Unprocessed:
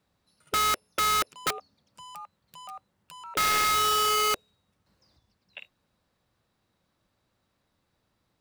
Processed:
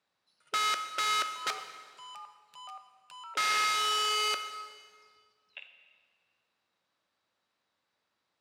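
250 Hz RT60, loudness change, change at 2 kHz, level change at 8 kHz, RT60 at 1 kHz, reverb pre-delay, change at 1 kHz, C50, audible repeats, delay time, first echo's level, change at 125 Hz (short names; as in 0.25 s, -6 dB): 1.9 s, -4.5 dB, -2.0 dB, -6.0 dB, 1.8 s, 14 ms, -5.0 dB, 8.5 dB, none, none, none, under -15 dB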